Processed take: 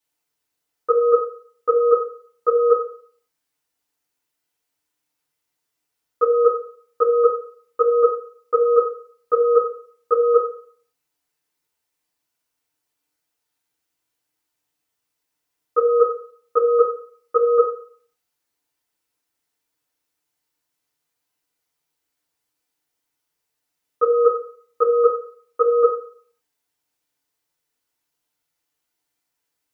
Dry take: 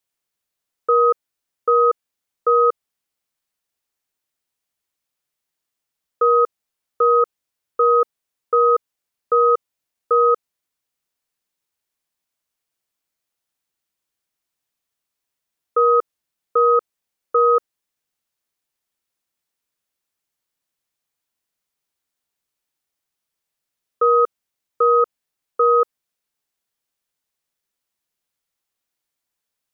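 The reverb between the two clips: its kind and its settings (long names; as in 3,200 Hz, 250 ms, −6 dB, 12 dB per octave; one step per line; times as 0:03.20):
feedback delay network reverb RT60 0.51 s, low-frequency decay 0.75×, high-frequency decay 0.7×, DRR −7.5 dB
level −4.5 dB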